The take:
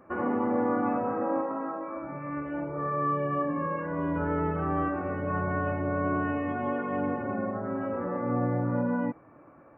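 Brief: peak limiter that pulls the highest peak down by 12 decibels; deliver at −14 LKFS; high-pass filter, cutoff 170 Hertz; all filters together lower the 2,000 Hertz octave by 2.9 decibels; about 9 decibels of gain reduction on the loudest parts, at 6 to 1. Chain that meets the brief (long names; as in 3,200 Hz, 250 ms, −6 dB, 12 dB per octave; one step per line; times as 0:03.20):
high-pass filter 170 Hz
parametric band 2,000 Hz −4.5 dB
downward compressor 6 to 1, threshold −34 dBFS
level +30 dB
brickwall limiter −6 dBFS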